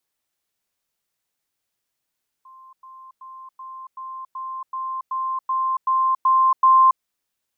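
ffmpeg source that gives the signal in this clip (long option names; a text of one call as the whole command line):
ffmpeg -f lavfi -i "aevalsrc='pow(10,(-43+3*floor(t/0.38))/20)*sin(2*PI*1050*t)*clip(min(mod(t,0.38),0.28-mod(t,0.38))/0.005,0,1)':duration=4.56:sample_rate=44100" out.wav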